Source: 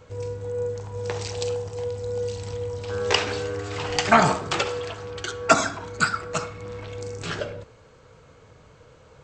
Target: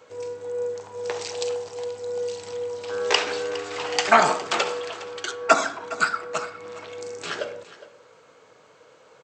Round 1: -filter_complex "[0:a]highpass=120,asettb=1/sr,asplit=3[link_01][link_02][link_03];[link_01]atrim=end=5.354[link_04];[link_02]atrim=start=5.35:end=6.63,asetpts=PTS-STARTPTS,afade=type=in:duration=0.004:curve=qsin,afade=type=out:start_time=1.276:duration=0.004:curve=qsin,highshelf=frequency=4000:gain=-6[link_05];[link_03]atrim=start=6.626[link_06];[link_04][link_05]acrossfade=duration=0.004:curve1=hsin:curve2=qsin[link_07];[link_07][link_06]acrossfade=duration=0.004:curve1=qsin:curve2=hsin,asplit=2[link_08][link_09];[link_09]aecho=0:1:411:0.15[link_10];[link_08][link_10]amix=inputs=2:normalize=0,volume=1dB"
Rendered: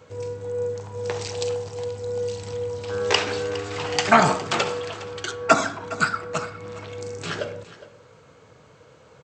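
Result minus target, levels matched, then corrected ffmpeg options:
125 Hz band +14.0 dB
-filter_complex "[0:a]highpass=350,asettb=1/sr,asplit=3[link_01][link_02][link_03];[link_01]atrim=end=5.354[link_04];[link_02]atrim=start=5.35:end=6.63,asetpts=PTS-STARTPTS,afade=type=in:duration=0.004:curve=qsin,afade=type=out:start_time=1.276:duration=0.004:curve=qsin,highshelf=frequency=4000:gain=-6[link_05];[link_03]atrim=start=6.626[link_06];[link_04][link_05]acrossfade=duration=0.004:curve1=hsin:curve2=qsin[link_07];[link_07][link_06]acrossfade=duration=0.004:curve1=qsin:curve2=hsin,asplit=2[link_08][link_09];[link_09]aecho=0:1:411:0.15[link_10];[link_08][link_10]amix=inputs=2:normalize=0,volume=1dB"

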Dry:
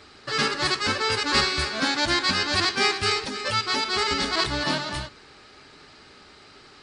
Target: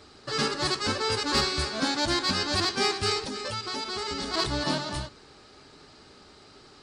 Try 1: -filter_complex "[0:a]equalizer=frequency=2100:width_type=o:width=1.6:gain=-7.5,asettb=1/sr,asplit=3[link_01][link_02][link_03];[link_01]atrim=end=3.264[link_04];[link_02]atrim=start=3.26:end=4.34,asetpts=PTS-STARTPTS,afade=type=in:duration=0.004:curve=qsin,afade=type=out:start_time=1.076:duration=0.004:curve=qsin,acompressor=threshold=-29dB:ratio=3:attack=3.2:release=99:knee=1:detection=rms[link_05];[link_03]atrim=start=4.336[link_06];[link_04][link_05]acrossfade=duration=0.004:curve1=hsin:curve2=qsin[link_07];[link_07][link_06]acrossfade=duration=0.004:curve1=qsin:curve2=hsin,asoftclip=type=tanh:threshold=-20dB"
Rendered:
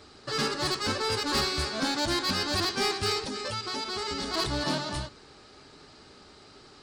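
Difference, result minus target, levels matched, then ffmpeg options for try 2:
soft clipping: distortion +13 dB
-filter_complex "[0:a]equalizer=frequency=2100:width_type=o:width=1.6:gain=-7.5,asettb=1/sr,asplit=3[link_01][link_02][link_03];[link_01]atrim=end=3.264[link_04];[link_02]atrim=start=3.26:end=4.34,asetpts=PTS-STARTPTS,afade=type=in:duration=0.004:curve=qsin,afade=type=out:start_time=1.076:duration=0.004:curve=qsin,acompressor=threshold=-29dB:ratio=3:attack=3.2:release=99:knee=1:detection=rms[link_05];[link_03]atrim=start=4.336[link_06];[link_04][link_05]acrossfade=duration=0.004:curve1=hsin:curve2=qsin[link_07];[link_07][link_06]acrossfade=duration=0.004:curve1=qsin:curve2=hsin,asoftclip=type=tanh:threshold=-11dB"

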